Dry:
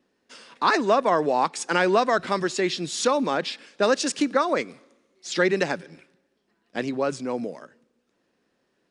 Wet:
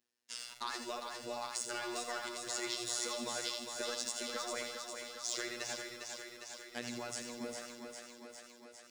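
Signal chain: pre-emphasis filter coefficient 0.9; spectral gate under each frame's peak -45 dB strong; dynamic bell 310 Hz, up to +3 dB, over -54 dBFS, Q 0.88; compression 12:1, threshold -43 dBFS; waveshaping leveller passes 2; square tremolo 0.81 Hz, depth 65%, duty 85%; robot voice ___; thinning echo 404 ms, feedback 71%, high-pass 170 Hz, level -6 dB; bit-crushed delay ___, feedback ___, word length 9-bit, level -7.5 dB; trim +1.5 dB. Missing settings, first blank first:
120 Hz, 82 ms, 35%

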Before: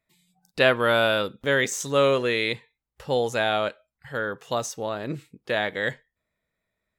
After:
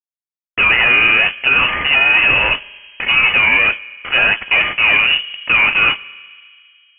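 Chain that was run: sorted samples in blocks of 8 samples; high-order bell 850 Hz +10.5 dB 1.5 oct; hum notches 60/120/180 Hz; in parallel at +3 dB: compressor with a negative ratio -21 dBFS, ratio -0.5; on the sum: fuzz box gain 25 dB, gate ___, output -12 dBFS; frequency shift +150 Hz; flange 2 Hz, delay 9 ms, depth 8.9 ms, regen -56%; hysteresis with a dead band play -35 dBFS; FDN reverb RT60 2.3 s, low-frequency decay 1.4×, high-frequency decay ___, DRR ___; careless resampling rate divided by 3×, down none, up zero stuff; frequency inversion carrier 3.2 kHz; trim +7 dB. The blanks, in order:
-29 dBFS, 0.5×, 19 dB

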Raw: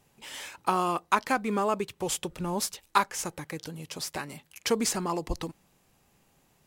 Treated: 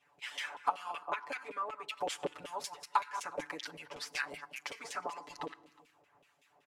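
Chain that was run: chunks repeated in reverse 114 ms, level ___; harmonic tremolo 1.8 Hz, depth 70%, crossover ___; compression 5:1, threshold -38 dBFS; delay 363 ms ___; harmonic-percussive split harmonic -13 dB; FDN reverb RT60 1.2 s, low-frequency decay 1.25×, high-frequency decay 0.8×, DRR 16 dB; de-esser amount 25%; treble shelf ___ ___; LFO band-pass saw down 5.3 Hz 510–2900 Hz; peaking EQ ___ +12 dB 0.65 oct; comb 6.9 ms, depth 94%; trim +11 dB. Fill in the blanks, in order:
-11.5 dB, 1.8 kHz, -23 dB, 4.6 kHz, +6.5 dB, 80 Hz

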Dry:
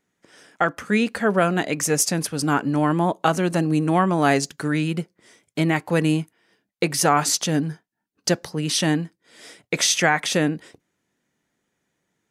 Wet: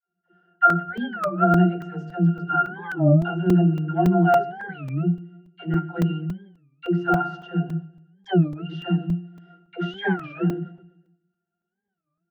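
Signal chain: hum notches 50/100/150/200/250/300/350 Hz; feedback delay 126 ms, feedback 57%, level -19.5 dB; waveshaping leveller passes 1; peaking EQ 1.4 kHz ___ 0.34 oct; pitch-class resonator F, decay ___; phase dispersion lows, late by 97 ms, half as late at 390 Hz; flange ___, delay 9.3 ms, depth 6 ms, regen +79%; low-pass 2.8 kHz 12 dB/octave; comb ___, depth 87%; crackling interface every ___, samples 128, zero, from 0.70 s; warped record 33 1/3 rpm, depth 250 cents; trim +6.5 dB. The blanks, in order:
+7 dB, 0.21 s, 0.34 Hz, 5.7 ms, 0.28 s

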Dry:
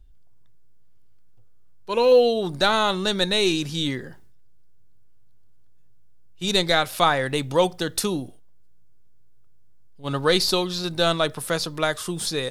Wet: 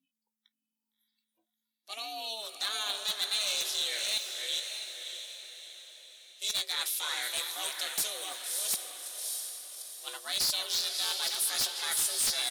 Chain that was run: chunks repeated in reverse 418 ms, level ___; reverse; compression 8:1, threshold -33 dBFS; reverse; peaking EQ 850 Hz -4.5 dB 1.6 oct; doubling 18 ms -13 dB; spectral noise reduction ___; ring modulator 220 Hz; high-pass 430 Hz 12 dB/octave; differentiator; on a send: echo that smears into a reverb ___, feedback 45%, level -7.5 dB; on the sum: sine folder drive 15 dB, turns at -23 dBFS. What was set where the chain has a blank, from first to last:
-13.5 dB, 27 dB, 621 ms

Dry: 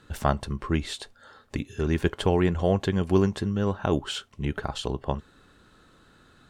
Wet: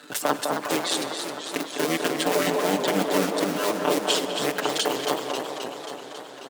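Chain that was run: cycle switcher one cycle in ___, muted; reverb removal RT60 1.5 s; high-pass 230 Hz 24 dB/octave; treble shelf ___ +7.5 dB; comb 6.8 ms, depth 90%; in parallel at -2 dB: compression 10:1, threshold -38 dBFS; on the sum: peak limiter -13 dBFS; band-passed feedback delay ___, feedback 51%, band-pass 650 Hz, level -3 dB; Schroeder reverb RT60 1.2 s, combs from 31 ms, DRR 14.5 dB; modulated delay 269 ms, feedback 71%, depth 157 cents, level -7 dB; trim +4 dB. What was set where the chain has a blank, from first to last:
2, 3.4 kHz, 203 ms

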